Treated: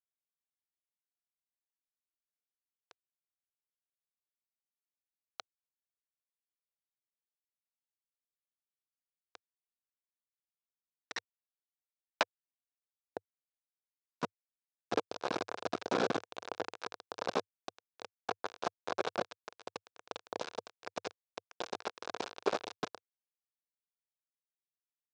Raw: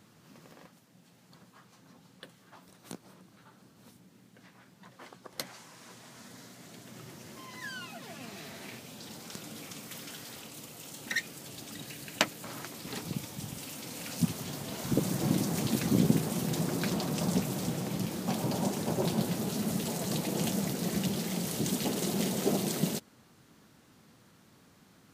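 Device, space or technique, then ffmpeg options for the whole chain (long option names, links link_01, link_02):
hand-held game console: -af "acrusher=bits=3:mix=0:aa=0.000001,highpass=410,equalizer=frequency=480:width_type=q:width=4:gain=5,equalizer=frequency=710:width_type=q:width=4:gain=4,equalizer=frequency=1000:width_type=q:width=4:gain=3,equalizer=frequency=1900:width_type=q:width=4:gain=-9,equalizer=frequency=3100:width_type=q:width=4:gain=-5,equalizer=frequency=4400:width_type=q:width=4:gain=-5,lowpass=frequency=5000:width=0.5412,lowpass=frequency=5000:width=1.3066,equalizer=frequency=100:width_type=o:width=0.67:gain=11,equalizer=frequency=400:width_type=o:width=0.67:gain=4,equalizer=frequency=1600:width_type=o:width=0.67:gain=6,equalizer=frequency=4000:width_type=o:width=0.67:gain=3,volume=-5dB"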